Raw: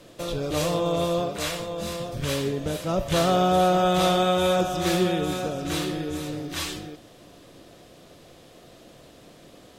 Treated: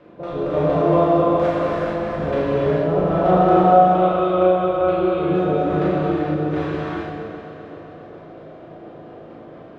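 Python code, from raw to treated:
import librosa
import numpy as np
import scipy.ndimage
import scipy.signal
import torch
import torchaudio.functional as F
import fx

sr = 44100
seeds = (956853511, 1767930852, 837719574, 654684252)

p1 = fx.highpass(x, sr, hz=130.0, slope=6)
p2 = fx.high_shelf(p1, sr, hz=4500.0, db=-6.5)
p3 = fx.rider(p2, sr, range_db=4, speed_s=2.0)
p4 = p2 + (p3 * 10.0 ** (1.5 / 20.0))
p5 = fx.quant_companded(p4, sr, bits=2, at=(1.28, 2.13))
p6 = fx.fixed_phaser(p5, sr, hz=1200.0, stages=8, at=(3.63, 5.25))
p7 = fx.filter_lfo_lowpass(p6, sr, shape='saw_down', hz=4.3, low_hz=610.0, high_hz=1900.0, q=0.91)
p8 = fx.doubler(p7, sr, ms=38.0, db=-2.5)
p9 = fx.echo_heads(p8, sr, ms=130, heads='all three', feedback_pct=63, wet_db=-16.5)
p10 = fx.rev_gated(p9, sr, seeds[0], gate_ms=470, shape='flat', drr_db=-6.5)
y = p10 * 10.0 ** (-7.5 / 20.0)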